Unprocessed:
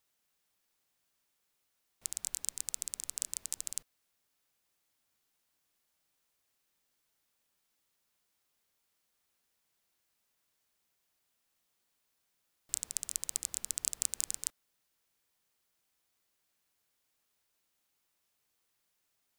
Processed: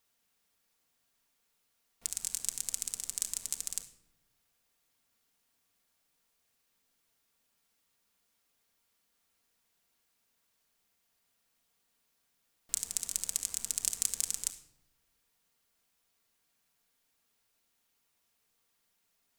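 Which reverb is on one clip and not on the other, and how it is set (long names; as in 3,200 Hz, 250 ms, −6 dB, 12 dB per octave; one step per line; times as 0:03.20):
rectangular room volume 2,700 cubic metres, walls furnished, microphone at 1.7 metres
level +1.5 dB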